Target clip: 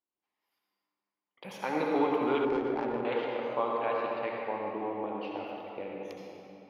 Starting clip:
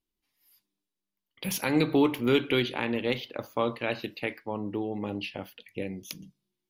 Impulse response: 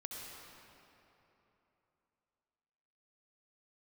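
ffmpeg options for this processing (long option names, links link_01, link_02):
-filter_complex "[0:a]bandpass=frequency=820:width_type=q:width=1.3:csg=0[link_01];[1:a]atrim=start_sample=2205[link_02];[link_01][link_02]afir=irnorm=-1:irlink=0,asettb=1/sr,asplit=3[link_03][link_04][link_05];[link_03]atrim=end=2.454[link_06];[link_04]atrim=start=2.45:end=3.05,asetpts=PTS-STARTPTS,afade=type=in:duration=0.004:curve=qsin,afade=type=out:start_time=0.596:duration=0.004:curve=qsin,adynamicsmooth=sensitivity=2:basefreq=750[link_07];[link_05]atrim=start=3.046[link_08];[link_06][link_07]acrossfade=duration=0.004:curve1=hsin:curve2=qsin[link_09];[link_09][link_08]acrossfade=duration=0.004:curve1=qsin:curve2=hsin,volume=6dB"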